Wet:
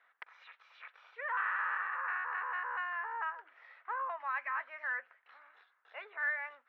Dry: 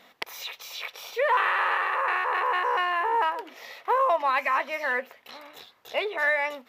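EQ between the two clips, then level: four-pole ladder low-pass 1.7 kHz, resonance 60%; differentiator; peaking EQ 200 Hz -10 dB 1 oct; +9.0 dB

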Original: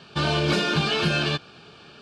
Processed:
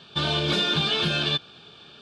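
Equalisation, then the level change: peaking EQ 3.5 kHz +13 dB 0.23 oct; -3.5 dB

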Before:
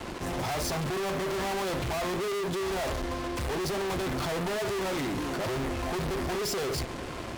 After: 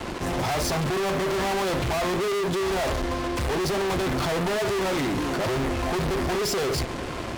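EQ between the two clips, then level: treble shelf 9 kHz -3.5 dB; +5.5 dB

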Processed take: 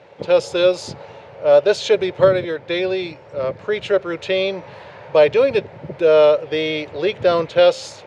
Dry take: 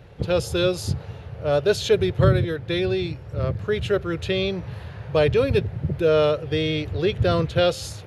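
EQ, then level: cabinet simulation 270–7700 Hz, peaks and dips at 570 Hz +8 dB, 920 Hz +8 dB, 2.2 kHz +5 dB; +2.0 dB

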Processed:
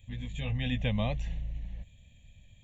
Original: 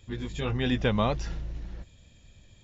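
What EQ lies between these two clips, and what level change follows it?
peaking EQ 980 Hz -11.5 dB 1 oct; static phaser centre 1.4 kHz, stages 6; 0.0 dB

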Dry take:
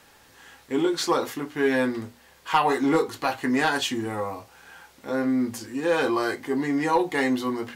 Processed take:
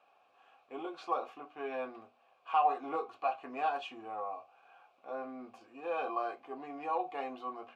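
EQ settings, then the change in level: vowel filter a; tone controls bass -2 dB, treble -6 dB; 0.0 dB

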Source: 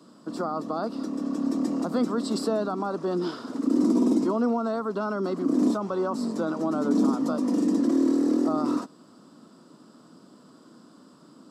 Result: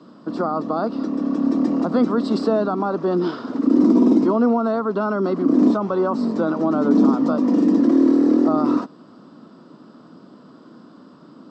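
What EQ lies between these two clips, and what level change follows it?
distance through air 180 m; +7.5 dB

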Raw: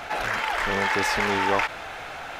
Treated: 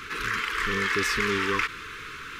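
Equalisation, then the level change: Chebyshev band-stop 440–1100 Hz, order 3; 0.0 dB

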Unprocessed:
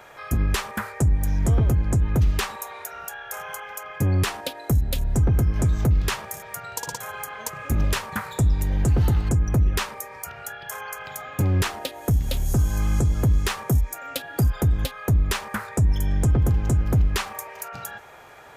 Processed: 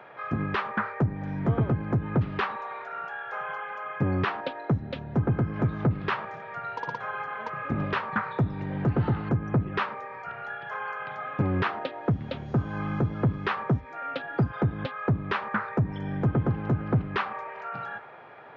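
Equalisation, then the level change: high-pass 120 Hz 24 dB/octave; dynamic bell 1.3 kHz, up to +5 dB, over -46 dBFS, Q 1.6; Gaussian low-pass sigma 3 samples; 0.0 dB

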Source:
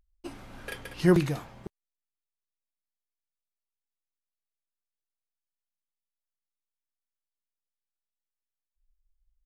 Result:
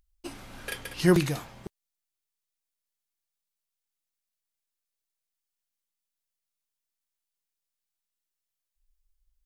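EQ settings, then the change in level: treble shelf 2.5 kHz +8 dB; 0.0 dB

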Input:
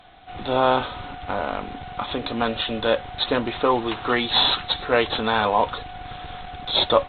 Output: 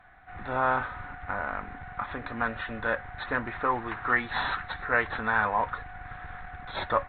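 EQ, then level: peaking EQ 410 Hz -10 dB 2.3 oct; resonant high shelf 2.4 kHz -11 dB, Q 3; -3.0 dB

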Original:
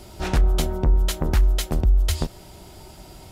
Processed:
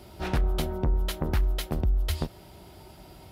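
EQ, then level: high-pass 49 Hz; peaking EQ 7.2 kHz -9 dB 0.88 oct; -4.0 dB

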